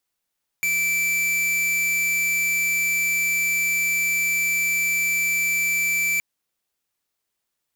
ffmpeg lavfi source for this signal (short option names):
-f lavfi -i "aevalsrc='0.0794*(2*lt(mod(2330*t,1),0.5)-1)':d=5.57:s=44100"